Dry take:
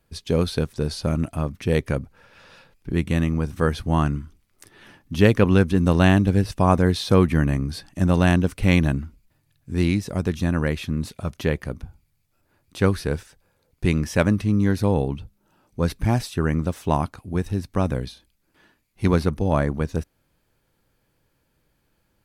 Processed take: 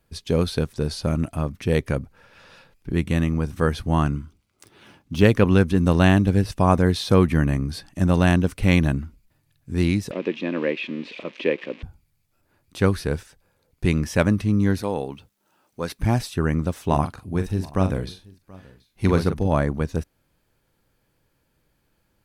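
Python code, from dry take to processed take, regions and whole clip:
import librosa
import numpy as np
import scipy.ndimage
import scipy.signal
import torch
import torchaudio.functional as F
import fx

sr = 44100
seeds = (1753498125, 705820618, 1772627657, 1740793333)

y = fx.chain(x, sr, fx.median_filter(points=3),
    fx.highpass(hz=50.0, slope=12),
    fx.notch(hz=1800.0, q=6.5), at=(4.07, 5.23))
y = fx.chain(y, sr, fx.crossing_spikes(level_db=-20.5),
    fx.cabinet(low_hz=240.0, low_slope=24, high_hz=3100.0, hz=(330.0, 520.0, 760.0, 1400.0, 2500.0), db=(4, 6, -8, -9, 7)), at=(10.11, 11.83))
y = fx.chain(y, sr, fx.highpass(hz=490.0, slope=6),
    fx.quant_dither(seeds[0], bits=12, dither='none'), at=(14.81, 15.99))
y = fx.chain(y, sr, fx.doubler(ms=42.0, db=-8.5),
    fx.echo_single(ms=730, db=-23.5), at=(16.85, 19.47))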